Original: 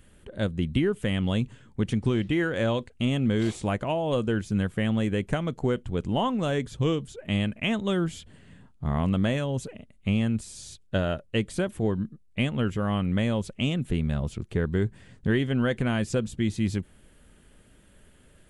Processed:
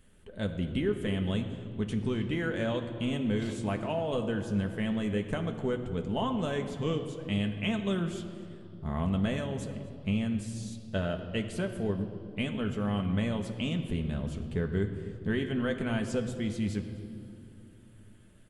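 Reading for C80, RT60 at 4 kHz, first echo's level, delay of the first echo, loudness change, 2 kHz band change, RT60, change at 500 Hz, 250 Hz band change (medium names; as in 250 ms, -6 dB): 9.5 dB, 1.9 s, -20.5 dB, 251 ms, -5.0 dB, -5.0 dB, 2.7 s, -4.5 dB, -4.0 dB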